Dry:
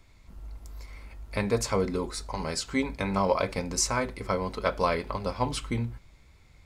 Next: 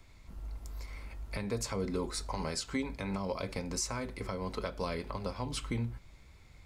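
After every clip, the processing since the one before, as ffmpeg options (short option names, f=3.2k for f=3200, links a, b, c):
-filter_complex "[0:a]acrossover=split=380|3000[a][b][c];[b]acompressor=threshold=-31dB:ratio=6[d];[a][d][c]amix=inputs=3:normalize=0,alimiter=limit=-23.5dB:level=0:latency=1:release=394"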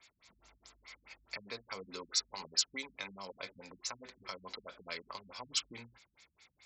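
-af "aderivative,afftfilt=real='re*lt(b*sr/1024,220*pow(8000/220,0.5+0.5*sin(2*PI*4.7*pts/sr)))':imag='im*lt(b*sr/1024,220*pow(8000/220,0.5+0.5*sin(2*PI*4.7*pts/sr)))':win_size=1024:overlap=0.75,volume=12.5dB"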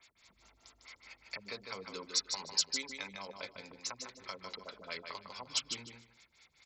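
-af "aecho=1:1:152|304|456:0.501|0.0952|0.0181"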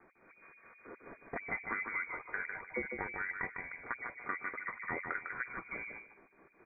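-filter_complex "[0:a]asplit=2[a][b];[b]volume=34dB,asoftclip=hard,volume=-34dB,volume=-7.5dB[c];[a][c]amix=inputs=2:normalize=0,lowpass=f=2.1k:t=q:w=0.5098,lowpass=f=2.1k:t=q:w=0.6013,lowpass=f=2.1k:t=q:w=0.9,lowpass=f=2.1k:t=q:w=2.563,afreqshift=-2500,volume=5dB"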